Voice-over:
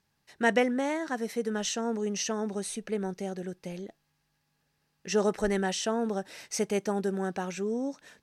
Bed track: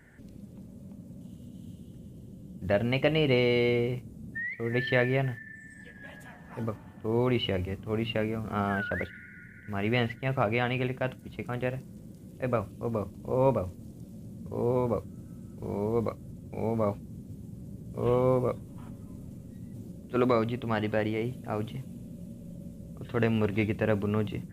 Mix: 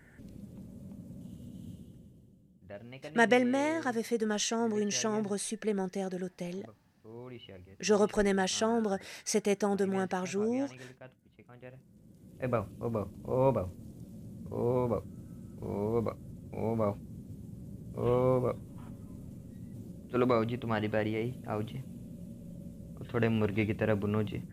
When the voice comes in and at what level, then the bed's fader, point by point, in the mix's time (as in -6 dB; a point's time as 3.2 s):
2.75 s, 0.0 dB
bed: 1.72 s -1 dB
2.65 s -20 dB
11.57 s -20 dB
12.48 s -2.5 dB